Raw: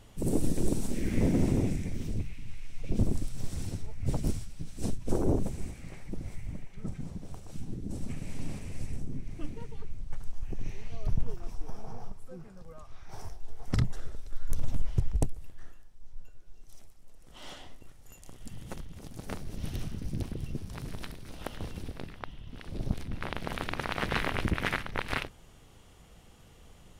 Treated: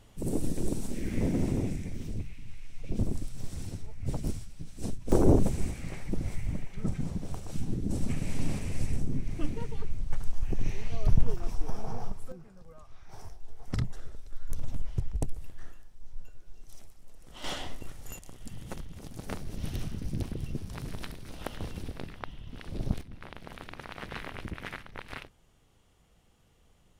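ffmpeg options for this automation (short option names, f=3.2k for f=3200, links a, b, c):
-af "asetnsamples=n=441:p=0,asendcmd='5.12 volume volume 6dB;12.32 volume volume -3.5dB;15.28 volume volume 3dB;17.44 volume volume 10dB;18.19 volume volume 1dB;23.01 volume volume -9.5dB',volume=-2.5dB"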